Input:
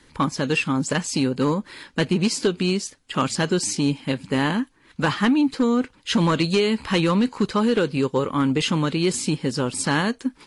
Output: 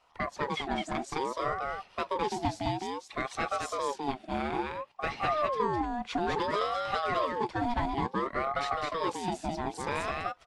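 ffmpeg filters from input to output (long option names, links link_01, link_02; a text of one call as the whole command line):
ffmpeg -i in.wav -filter_complex "[0:a]aeval=exprs='0.299*(cos(1*acos(clip(val(0)/0.299,-1,1)))-cos(1*PI/2))+0.00376*(cos(4*acos(clip(val(0)/0.299,-1,1)))-cos(4*PI/2))+0.00211*(cos(6*acos(clip(val(0)/0.299,-1,1)))-cos(6*PI/2))+0.00531*(cos(7*acos(clip(val(0)/0.299,-1,1)))-cos(7*PI/2))+0.00168*(cos(8*acos(clip(val(0)/0.299,-1,1)))-cos(8*PI/2))':channel_layout=same,aemphasis=mode=reproduction:type=50kf,asplit=2[link_01][link_02];[link_02]aecho=0:1:208:0.708[link_03];[link_01][link_03]amix=inputs=2:normalize=0,aeval=exprs='val(0)*sin(2*PI*730*n/s+730*0.35/0.58*sin(2*PI*0.58*n/s))':channel_layout=same,volume=-8.5dB" out.wav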